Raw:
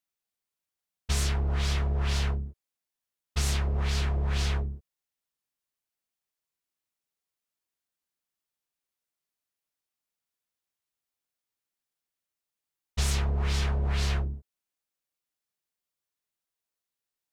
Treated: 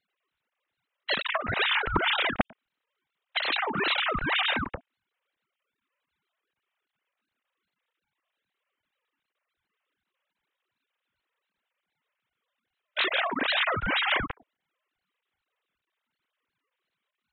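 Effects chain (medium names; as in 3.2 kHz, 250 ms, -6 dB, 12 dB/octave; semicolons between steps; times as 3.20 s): formants replaced by sine waves; ring modulator with a swept carrier 460 Hz, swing 55%, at 2.6 Hz; trim +2 dB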